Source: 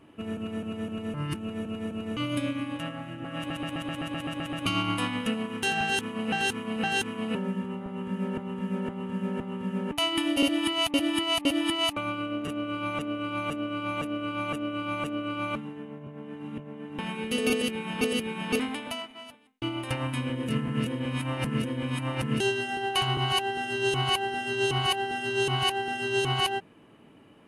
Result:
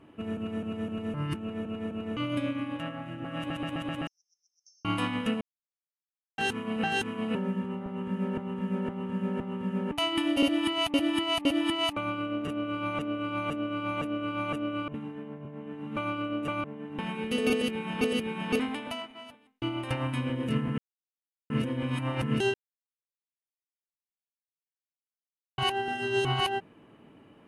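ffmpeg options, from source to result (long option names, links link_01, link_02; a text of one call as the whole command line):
ffmpeg -i in.wav -filter_complex "[0:a]asettb=1/sr,asplit=3[link_01][link_02][link_03];[link_01]atrim=end=1.354[link_04];[link_02]atrim=start=1.35:end=3.06,asetpts=PTS-STARTPTS,afade=type=in:duration=0.004:curve=qsin,afade=type=out:start_time=1.706:duration=0.004:curve=qsin,bass=frequency=250:gain=-2,treble=frequency=4000:gain=-4[link_05];[link_03]atrim=start=3.056[link_06];[link_04][link_05]acrossfade=duration=0.004:curve1=hsin:curve2=qsin[link_07];[link_07][link_06]acrossfade=duration=0.004:curve1=qsin:curve2=hsin,asettb=1/sr,asplit=3[link_08][link_09][link_10];[link_08]atrim=end=4.074[link_11];[link_09]atrim=start=4.07:end=4.85,asetpts=PTS-STARTPTS,afade=type=in:duration=0.004:curve=qsin,afade=type=out:start_time=0.776:duration=0.004:curve=qsin,asuperpass=centerf=5700:order=8:qfactor=5.4[link_12];[link_10]atrim=start=4.846[link_13];[link_11][link_12]acrossfade=duration=0.004:curve1=hsin:curve2=qsin[link_14];[link_14][link_13]acrossfade=duration=0.004:curve1=qsin:curve2=hsin,asplit=9[link_15][link_16][link_17][link_18][link_19][link_20][link_21][link_22][link_23];[link_15]atrim=end=5.41,asetpts=PTS-STARTPTS,afade=type=out:start_time=5.406:duration=0.004:curve=hsin[link_24];[link_16]atrim=start=5.41:end=6.38,asetpts=PTS-STARTPTS,volume=0[link_25];[link_17]atrim=start=6.38:end=14.882,asetpts=PTS-STARTPTS,afade=type=in:duration=0.004:curve=hsin[link_26];[link_18]atrim=start=14.878:end=16.642,asetpts=PTS-STARTPTS,areverse[link_27];[link_19]atrim=start=16.638:end=20.78,asetpts=PTS-STARTPTS,afade=type=out:start_time=4.138:duration=0.004:curve=hsin[link_28];[link_20]atrim=start=20.78:end=21.5,asetpts=PTS-STARTPTS,volume=0[link_29];[link_21]atrim=start=21.5:end=22.54,asetpts=PTS-STARTPTS,afade=type=in:duration=0.004:curve=hsin,afade=type=out:start_time=1.036:duration=0.004:curve=hsin[link_30];[link_22]atrim=start=22.54:end=25.58,asetpts=PTS-STARTPTS,volume=0[link_31];[link_23]atrim=start=25.58,asetpts=PTS-STARTPTS,afade=type=in:duration=0.004:curve=hsin[link_32];[link_24][link_25][link_26]concat=n=3:v=0:a=1[link_33];[link_33][link_27]acrossfade=duration=0.004:curve1=hsin:curve2=hsin[link_34];[link_28][link_29][link_30][link_31][link_32]concat=n=5:v=0:a=1[link_35];[link_34][link_35]acrossfade=duration=0.004:curve1=hsin:curve2=hsin,highshelf=frequency=3900:gain=-8" out.wav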